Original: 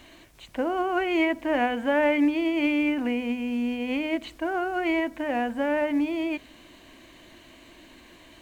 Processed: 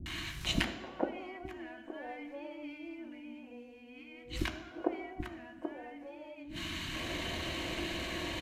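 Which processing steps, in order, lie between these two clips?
treble shelf 5.4 kHz -6 dB; inverted gate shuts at -25 dBFS, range -33 dB; Chebyshev shaper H 8 -18 dB, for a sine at -22.5 dBFS; three bands offset in time lows, highs, mids 60/450 ms, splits 280/1000 Hz; on a send at -4 dB: reverberation RT60 1.0 s, pre-delay 3 ms; on the sum: resampled via 32 kHz; trim +13 dB

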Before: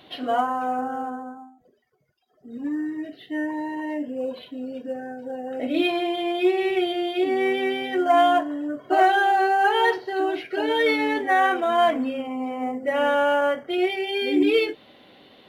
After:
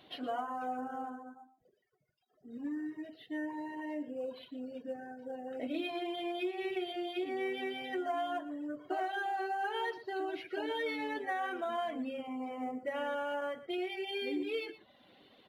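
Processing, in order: reverb removal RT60 0.6 s; compression, threshold -24 dBFS, peak gain reduction 10 dB; on a send: delay 118 ms -15 dB; on the sum: trim -9 dB

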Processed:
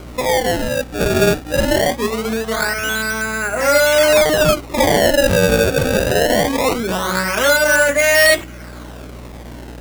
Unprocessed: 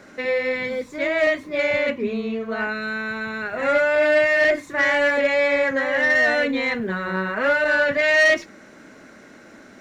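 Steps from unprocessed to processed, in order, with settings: bass shelf 190 Hz -8.5 dB; band-stop 1.8 kHz, Q 14; de-hum 53.74 Hz, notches 8; in parallel at -1 dB: compression, threshold -32 dBFS, peak gain reduction 16 dB; on the sum: hum 60 Hz, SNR 19 dB; decimation with a swept rate 24×, swing 160% 0.22 Hz; trim +5 dB

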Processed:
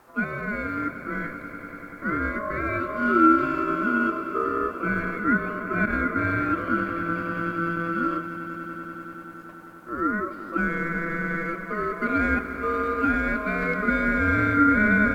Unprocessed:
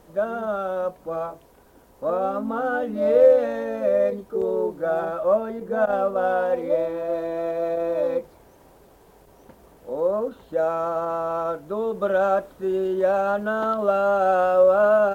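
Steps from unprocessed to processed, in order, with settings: echo with a slow build-up 97 ms, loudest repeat 5, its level -16 dB; ring modulator 840 Hz

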